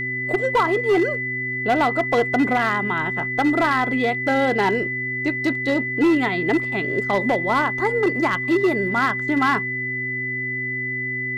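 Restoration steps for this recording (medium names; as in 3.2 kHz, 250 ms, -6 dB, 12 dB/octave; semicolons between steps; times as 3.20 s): clip repair -13 dBFS; de-hum 126.5 Hz, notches 3; band-stop 2 kHz, Q 30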